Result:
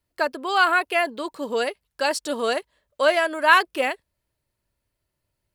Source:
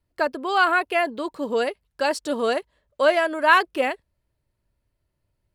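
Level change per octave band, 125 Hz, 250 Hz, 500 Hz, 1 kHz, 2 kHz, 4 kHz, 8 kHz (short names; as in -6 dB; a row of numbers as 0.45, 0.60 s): n/a, -2.5 dB, -1.0 dB, 0.0 dB, +1.0 dB, +2.5 dB, +4.5 dB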